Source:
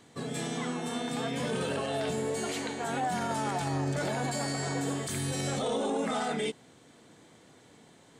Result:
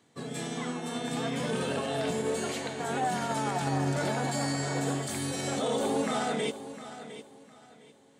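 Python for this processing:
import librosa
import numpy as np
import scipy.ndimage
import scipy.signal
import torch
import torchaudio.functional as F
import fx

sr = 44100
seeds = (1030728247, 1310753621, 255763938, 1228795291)

y = scipy.signal.sosfilt(scipy.signal.butter(2, 84.0, 'highpass', fs=sr, output='sos'), x)
y = fx.echo_feedback(y, sr, ms=707, feedback_pct=41, wet_db=-9.0)
y = fx.upward_expand(y, sr, threshold_db=-48.0, expansion=1.5)
y = F.gain(torch.from_numpy(y), 2.0).numpy()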